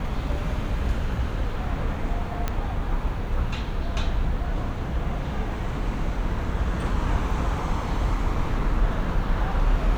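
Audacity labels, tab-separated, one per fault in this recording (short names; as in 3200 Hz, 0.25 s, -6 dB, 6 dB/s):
2.480000	2.480000	pop -12 dBFS
7.310000	7.310000	gap 2.1 ms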